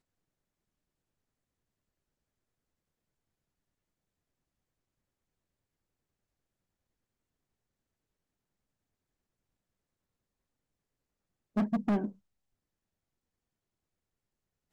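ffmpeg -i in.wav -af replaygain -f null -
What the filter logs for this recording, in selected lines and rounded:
track_gain = +64.0 dB
track_peak = 0.041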